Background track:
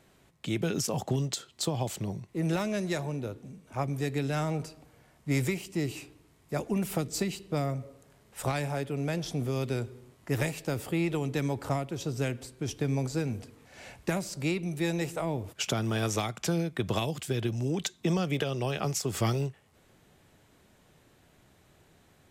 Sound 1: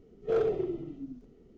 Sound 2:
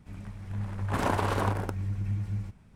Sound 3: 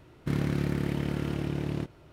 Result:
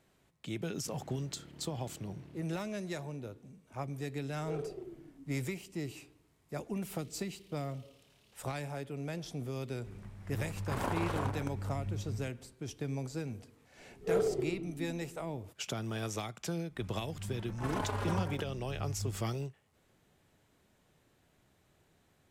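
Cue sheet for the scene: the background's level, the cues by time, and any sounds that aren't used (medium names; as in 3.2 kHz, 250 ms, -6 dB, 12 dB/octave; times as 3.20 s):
background track -8 dB
0.59 s: add 3 -15 dB + peak limiter -27 dBFS
4.18 s: add 1 -13 dB
6.55 s: add 3 -16 dB + inverse Chebyshev high-pass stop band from 1.4 kHz
9.78 s: add 2 -7.5 dB
13.79 s: add 1 -3 dB + band-stop 2.6 kHz
16.70 s: add 2 -5.5 dB + endless flanger 4.2 ms -0.96 Hz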